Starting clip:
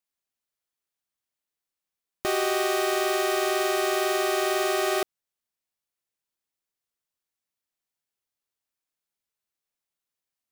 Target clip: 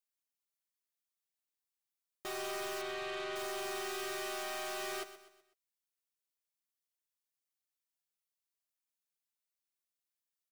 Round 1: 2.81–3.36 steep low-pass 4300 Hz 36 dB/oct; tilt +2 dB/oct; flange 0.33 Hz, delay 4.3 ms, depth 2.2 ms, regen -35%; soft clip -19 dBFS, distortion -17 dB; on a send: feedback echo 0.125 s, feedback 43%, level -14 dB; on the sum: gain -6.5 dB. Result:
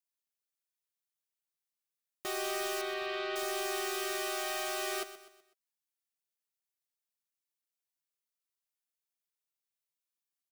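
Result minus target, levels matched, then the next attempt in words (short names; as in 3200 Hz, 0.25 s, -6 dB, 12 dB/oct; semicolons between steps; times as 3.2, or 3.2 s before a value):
soft clip: distortion -10 dB
2.81–3.36 steep low-pass 4300 Hz 36 dB/oct; tilt +2 dB/oct; flange 0.33 Hz, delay 4.3 ms, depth 2.2 ms, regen -35%; soft clip -30 dBFS, distortion -8 dB; on a send: feedback echo 0.125 s, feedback 43%, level -14 dB; on the sum: gain -6.5 dB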